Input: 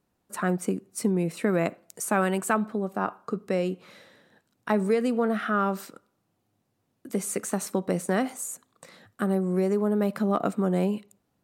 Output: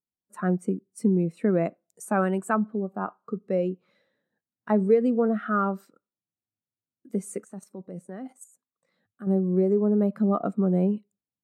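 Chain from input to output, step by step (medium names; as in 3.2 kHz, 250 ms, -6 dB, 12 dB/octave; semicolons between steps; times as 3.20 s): 7.44–9.27 s: level held to a coarse grid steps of 11 dB; spectral contrast expander 1.5:1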